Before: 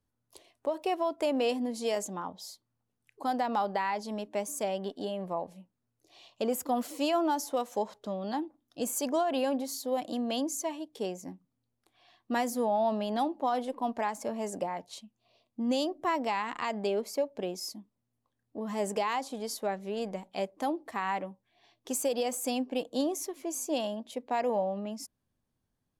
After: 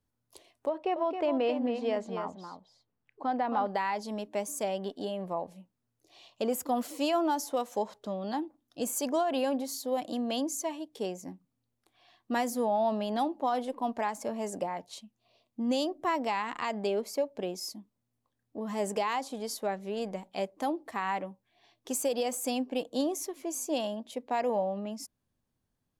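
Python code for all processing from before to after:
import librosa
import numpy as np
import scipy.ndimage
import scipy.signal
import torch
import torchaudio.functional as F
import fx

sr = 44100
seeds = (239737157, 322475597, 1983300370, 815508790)

y = fx.chain(x, sr, fx.lowpass(hz=2500.0, slope=12),
    fx.echo_single(ms=269, db=-7.5), at=(0.69, 3.67))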